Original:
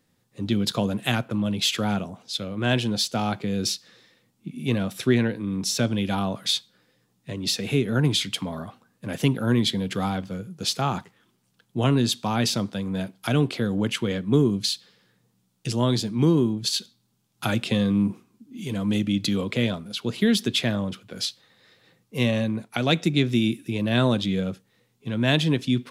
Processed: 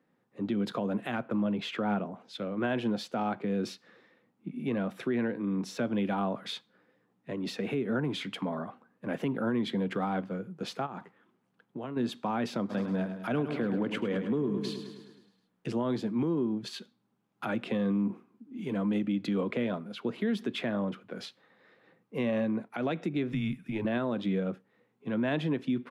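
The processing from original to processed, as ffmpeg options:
-filter_complex "[0:a]asettb=1/sr,asplit=3[a][b][c];[a]atrim=end=1.404[d];[b]atrim=start=1.4:end=2.11,asetpts=PTS-STARTPTS,afade=t=in:d=0.004:c=qsin,afade=t=out:st=0.706:d=0.004:c=qsin,aemphasis=mode=reproduction:type=cd[e];[c]atrim=start=2.106[f];[d][e]acrossfade=d=0.004:c1=hsin:c2=qsin[g];[g][f]acrossfade=d=0.004:c1=qsin:c2=hsin,asplit=3[h][i][j];[h]afade=t=out:st=10.85:d=0.02[k];[i]acompressor=threshold=-31dB:ratio=12:attack=3.2:release=140:knee=1:detection=peak,afade=t=in:st=10.85:d=0.02,afade=t=out:st=11.96:d=0.02[l];[j]afade=t=in:st=11.96:d=0.02[m];[k][l][m]amix=inputs=3:normalize=0,asplit=3[n][o][p];[n]afade=t=out:st=12.69:d=0.02[q];[o]aecho=1:1:105|210|315|420|525|630|735:0.316|0.18|0.103|0.0586|0.0334|0.019|0.0108,afade=t=in:st=12.69:d=0.02,afade=t=out:st=15.69:d=0.02[r];[p]afade=t=in:st=15.69:d=0.02[s];[q][r][s]amix=inputs=3:normalize=0,asettb=1/sr,asplit=3[t][u][v];[t]atrim=end=23.324[w];[u]atrim=start=23.32:end=23.85,asetpts=PTS-STARTPTS,afade=t=in:d=0.004:c=qsin,afade=t=out:st=0.526:d=0.004:c=qsin,afreqshift=-100[x];[v]atrim=start=23.846[y];[w][x]acrossfade=d=0.004:c1=hsin:c2=qsin[z];[z][y]acrossfade=d=0.004:c1=qsin:c2=hsin,acrossover=split=160 2200:gain=0.1 1 0.0891[aa][ab][ac];[aa][ab][ac]amix=inputs=3:normalize=0,alimiter=limit=-21.5dB:level=0:latency=1:release=130,equalizer=f=66:t=o:w=0.66:g=-12.5"

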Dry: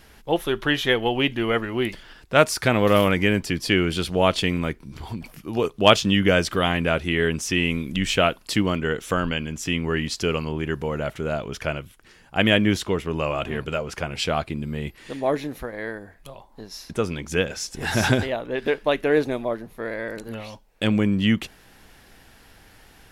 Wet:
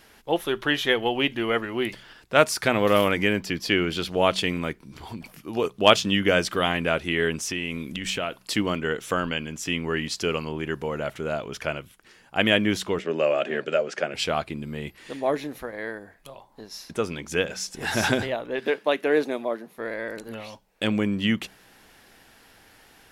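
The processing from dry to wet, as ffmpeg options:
-filter_complex "[0:a]asettb=1/sr,asplit=3[a][b][c];[a]atrim=end=3.334[d];[b]atrim=start=3.33:end=4.11,asetpts=PTS-STARTPTS,afade=t=in:d=0.004:c=qsin,afade=t=out:st=0.776:d=0.004:c=qsin,equalizer=f=9.1k:w=2.1:g=-8[e];[c]atrim=start=4.106[f];[d][e]acrossfade=d=0.004:c1=hsin:c2=qsin[g];[g][f]acrossfade=d=0.004:c1=qsin:c2=hsin,asettb=1/sr,asplit=3[h][i][j];[h]atrim=end=7.374[k];[i]atrim=start=7.37:end=8.43,asetpts=PTS-STARTPTS,afade=t=in:d=0.004:c=qsin,afade=t=out:st=1.056:d=0.004:c=qsin,acompressor=threshold=-22dB:ratio=6:attack=3.2:release=140:knee=1:detection=peak[l];[j]atrim=start=8.426[m];[k][l]acrossfade=d=0.004:c1=hsin:c2=qsin[n];[n][m]acrossfade=d=0.004:c1=qsin:c2=hsin,asettb=1/sr,asplit=3[o][p][q];[o]atrim=end=12.994[r];[p]atrim=start=12.99:end=14.14,asetpts=PTS-STARTPTS,afade=t=in:d=0.004:c=qsin,afade=t=out:st=1.146:d=0.004:c=qsin,highpass=f=170:w=0.5412,highpass=f=170:w=1.3066,equalizer=f=390:t=q:w=4:g=4,equalizer=f=580:t=q:w=4:g=9,equalizer=f=1k:t=q:w=4:g=-8,equalizer=f=1.7k:t=q:w=4:g=6,lowpass=f=7.9k:w=0.5412,lowpass=f=7.9k:w=1.3066[s];[q]atrim=start=14.136[t];[r][s]acrossfade=d=0.004:c1=hsin:c2=qsin[u];[u][t]acrossfade=d=0.004:c1=qsin:c2=hsin,asettb=1/sr,asplit=3[v][w][x];[v]atrim=end=18.604[y];[w]atrim=start=18.6:end=19.78,asetpts=PTS-STARTPTS,afade=t=in:d=0.004:c=qsin,afade=t=out:st=1.176:d=0.004:c=qsin,highpass=f=170:w=0.5412,highpass=f=170:w=1.3066[z];[x]atrim=start=19.776[aa];[y][z]acrossfade=d=0.004:c1=hsin:c2=qsin[ab];[ab][aa]acrossfade=d=0.004:c1=qsin:c2=hsin,lowshelf=f=120:g=-11.5,bandreject=f=62.92:t=h:w=4,bandreject=f=125.84:t=h:w=4,bandreject=f=188.76:t=h:w=4,volume=-1dB"

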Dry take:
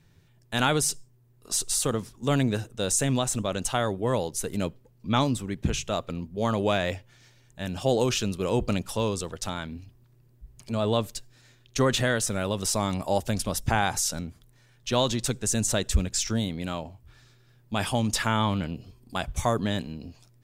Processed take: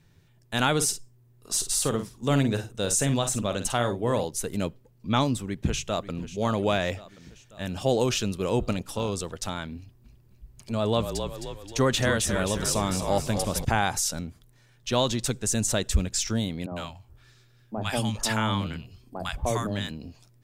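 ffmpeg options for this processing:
-filter_complex "[0:a]asettb=1/sr,asplit=3[a][b][c];[a]atrim=end=0.744[d];[b]atrim=start=0.74:end=4.25,asetpts=PTS-STARTPTS,afade=t=in:d=0.004:c=qsin,afade=t=out:st=3.506:d=0.004:c=qsin,asplit=2[e][f];[f]adelay=50,volume=-9dB[g];[e][g]amix=inputs=2:normalize=0,atrim=end_sample=154791[h];[c]atrim=start=4.246[i];[d][h]acrossfade=d=0.004:c1=hsin:c2=qsin[j];[j][i]acrossfade=d=0.004:c1=qsin:c2=hsin,asplit=2[k][l];[l]afade=t=in:st=5.42:d=0.01,afade=t=out:st=6.23:d=0.01,aecho=0:1:540|1080|1620|2160|2700|3240:0.199526|0.119716|0.0718294|0.0430977|0.0258586|0.0155152[m];[k][m]amix=inputs=2:normalize=0,asplit=3[n][o][p];[n]afade=t=out:st=8.71:d=0.02[q];[o]tremolo=f=300:d=0.519,afade=t=in:st=8.71:d=0.02,afade=t=out:st=9.11:d=0.02[r];[p]afade=t=in:st=9.11:d=0.02[s];[q][r][s]amix=inputs=3:normalize=0,asettb=1/sr,asplit=3[t][u][v];[t]atrim=end=9.784[w];[u]atrim=start=9.78:end=13.65,asetpts=PTS-STARTPTS,afade=t=in:d=0.004:c=qsin,afade=t=out:st=3.866:d=0.004:c=qsin,asplit=7[x][y][z][aa][ab][ac][ad];[y]adelay=263,afreqshift=-41,volume=-7dB[ae];[z]adelay=526,afreqshift=-82,volume=-12.7dB[af];[aa]adelay=789,afreqshift=-123,volume=-18.4dB[ag];[ab]adelay=1052,afreqshift=-164,volume=-24dB[ah];[ac]adelay=1315,afreqshift=-205,volume=-29.7dB[ai];[ad]adelay=1578,afreqshift=-246,volume=-35.4dB[aj];[x][ae][af][ag][ah][ai][aj]amix=inputs=7:normalize=0,atrim=end_sample=170667[ak];[v]atrim=start=13.646[al];[w][ak]acrossfade=d=0.004:c1=hsin:c2=qsin[am];[am][al]acrossfade=d=0.004:c1=qsin:c2=hsin,asettb=1/sr,asplit=3[an][ao][ap];[an]atrim=end=16.664[aq];[ao]atrim=start=16.66:end=19.91,asetpts=PTS-STARTPTS,afade=t=in:d=0.004:c=qsin,afade=t=out:st=3.246:d=0.004:c=qsin,acrossover=split=200|890[ar][as][at];[ar]adelay=50[au];[at]adelay=100[av];[au][as][av]amix=inputs=3:normalize=0,atrim=end_sample=143325[aw];[ap]atrim=start=19.906[ax];[aq][aw]acrossfade=d=0.004:c1=hsin:c2=qsin[ay];[ay][ax]acrossfade=d=0.004:c1=qsin:c2=hsin"

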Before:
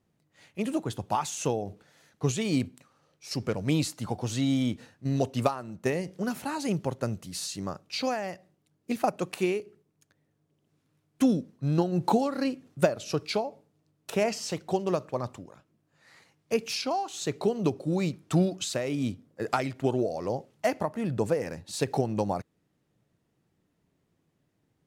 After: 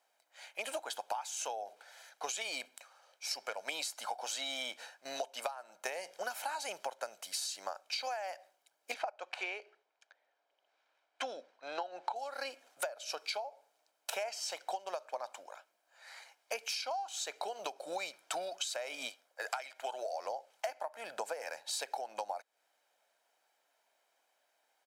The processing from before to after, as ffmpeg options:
-filter_complex "[0:a]asettb=1/sr,asplit=3[a][b][c];[a]atrim=end=8.944[d];[b]atrim=start=8.94:end=12.16,asetpts=PTS-STARTPTS,afade=t=in:d=0.004:c=qsin,afade=t=out:st=3.216:d=0.004:c=qsin,highpass=260,lowpass=3.8k[e];[c]atrim=start=12.156[f];[d][e]acrossfade=d=0.004:c1=hsin:c2=qsin[g];[g][f]acrossfade=d=0.004:c1=qsin:c2=hsin,asettb=1/sr,asplit=3[h][i][j];[h]atrim=end=19.094[k];[i]atrim=start=19.09:end=20.13,asetpts=PTS-STARTPTS,afade=t=in:d=0.004:c=qsin,afade=t=out:st=1.036:d=0.004:c=qsin,equalizer=f=140:w=0.46:g=-13.5[l];[j]atrim=start=20.126[m];[k][l]acrossfade=d=0.004:c1=hsin:c2=qsin[n];[n][m]acrossfade=d=0.004:c1=qsin:c2=hsin,highpass=f=590:w=0.5412,highpass=f=590:w=1.3066,aecho=1:1:1.3:0.48,acompressor=threshold=-40dB:ratio=12,volume=5dB"

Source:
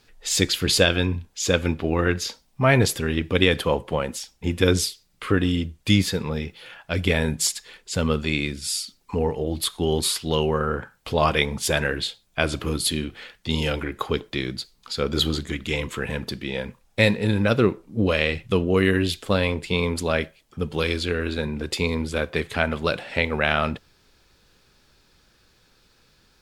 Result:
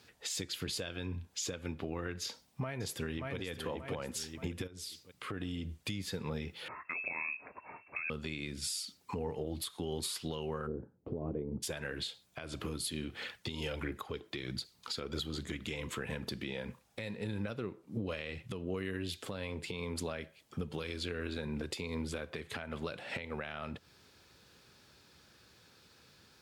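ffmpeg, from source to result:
-filter_complex "[0:a]asplit=2[a][b];[b]afade=t=in:st=2.22:d=0.01,afade=t=out:st=3.37:d=0.01,aecho=0:1:580|1160|1740:0.446684|0.0893367|0.0178673[c];[a][c]amix=inputs=2:normalize=0,asplit=3[d][e][f];[d]afade=t=out:st=4.66:d=0.02[g];[e]acompressor=threshold=-33dB:ratio=6:attack=3.2:release=140:knee=1:detection=peak,afade=t=in:st=4.66:d=0.02,afade=t=out:st=5.79:d=0.02[h];[f]afade=t=in:st=5.79:d=0.02[i];[g][h][i]amix=inputs=3:normalize=0,asettb=1/sr,asplit=3[j][k][l];[j]atrim=end=6.684[m];[k]atrim=start=6.68:end=8.1,asetpts=PTS-STARTPTS,afade=t=in:d=0.004:c=qsin,afade=t=out:st=1.416:d=0.004:c=qsin,lowpass=f=2.3k:t=q:w=0.5098,lowpass=f=2.3k:t=q:w=0.6013,lowpass=f=2.3k:t=q:w=0.9,lowpass=f=2.3k:t=q:w=2.563,afreqshift=-2700[n];[l]atrim=start=8.096[o];[m][n]acrossfade=d=0.004:c1=hsin:c2=qsin[p];[p][o]acrossfade=d=0.004:c1=qsin:c2=hsin,asplit=3[q][r][s];[q]afade=t=out:st=10.66:d=0.02[t];[r]lowpass=f=350:t=q:w=2.2,afade=t=in:st=10.66:d=0.02,afade=t=out:st=11.62:d=0.02[u];[s]afade=t=in:st=11.62:d=0.02[v];[t][u][v]amix=inputs=3:normalize=0,asettb=1/sr,asplit=3[w][x][y];[w]atrim=end=13.214[z];[x]atrim=start=13.21:end=15.26,asetpts=PTS-STARTPTS,afade=t=in:d=0.004:c=qsin,afade=t=out:st=2.046:d=0.004:c=qsin,aphaser=in_gain=1:out_gain=1:delay=3.3:decay=0.36:speed=1.4:type=triangular[aa];[y]atrim=start=15.256[ab];[z][aa]acrossfade=d=0.004:c1=hsin:c2=qsin[ac];[ac][ab]acrossfade=d=0.004:c1=qsin:c2=hsin,highpass=f=70:w=0.5412,highpass=f=70:w=1.3066,acompressor=threshold=-31dB:ratio=10,alimiter=level_in=1.5dB:limit=-24dB:level=0:latency=1:release=153,volume=-1.5dB,volume=-1.5dB"

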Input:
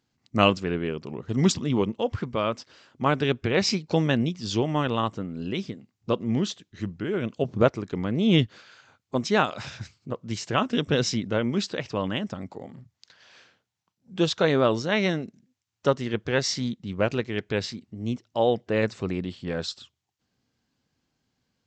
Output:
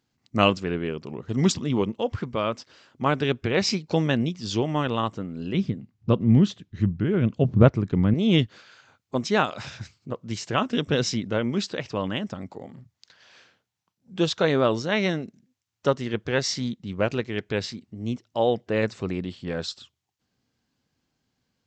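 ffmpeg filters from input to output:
-filter_complex "[0:a]asettb=1/sr,asplit=3[a][b][c];[a]atrim=end=5.544[d];[b]atrim=start=5.54:end=8.14,asetpts=PTS-STARTPTS,afade=t=in:d=0.004:c=qsin,afade=t=out:st=2.596:d=0.004:c=qsin,bass=f=250:g=12,treble=f=4k:g=-7[e];[c]atrim=start=8.136[f];[d][e]acrossfade=d=0.004:c1=hsin:c2=qsin[g];[g][f]acrossfade=d=0.004:c1=qsin:c2=hsin"

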